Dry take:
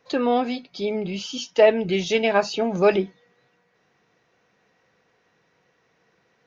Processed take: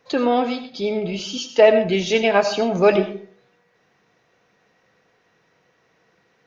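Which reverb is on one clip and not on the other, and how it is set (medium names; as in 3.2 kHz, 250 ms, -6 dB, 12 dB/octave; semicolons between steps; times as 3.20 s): algorithmic reverb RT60 0.46 s, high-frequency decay 0.6×, pre-delay 45 ms, DRR 9 dB; trim +2.5 dB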